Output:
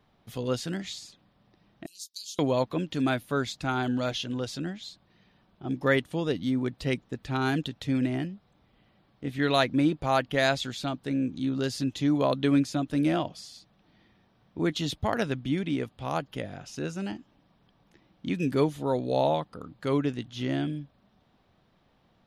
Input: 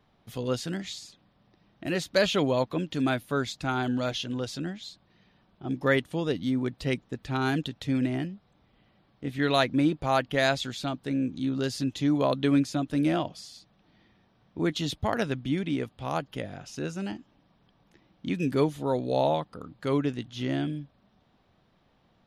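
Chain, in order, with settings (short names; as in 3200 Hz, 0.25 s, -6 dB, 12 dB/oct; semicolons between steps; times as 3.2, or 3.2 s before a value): 1.86–2.39 inverse Chebyshev high-pass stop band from 2000 Hz, stop band 50 dB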